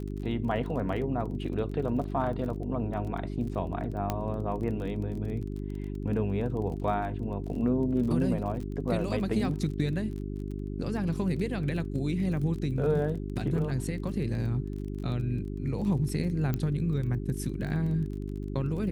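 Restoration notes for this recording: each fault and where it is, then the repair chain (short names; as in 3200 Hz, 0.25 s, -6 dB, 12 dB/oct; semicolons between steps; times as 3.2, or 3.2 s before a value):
crackle 26/s -37 dBFS
hum 50 Hz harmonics 8 -35 dBFS
4.1 pop -15 dBFS
16.54 pop -17 dBFS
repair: de-click; de-hum 50 Hz, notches 8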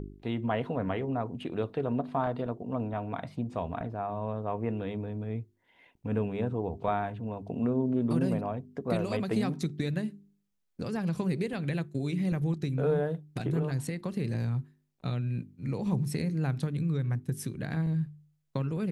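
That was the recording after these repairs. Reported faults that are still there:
16.54 pop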